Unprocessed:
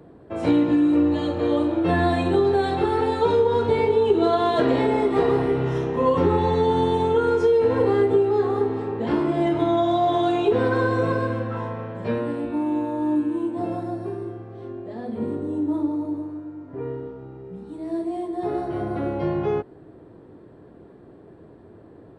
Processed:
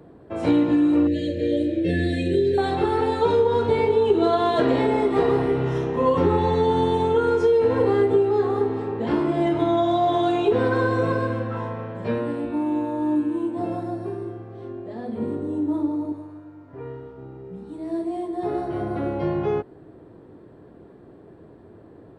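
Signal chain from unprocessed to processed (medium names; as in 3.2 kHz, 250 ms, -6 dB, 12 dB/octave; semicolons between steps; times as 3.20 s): 1.07–2.58 s: elliptic band-stop 570–1800 Hz, stop band 40 dB; 16.12–17.18 s: peaking EQ 280 Hz -7.5 dB 2 oct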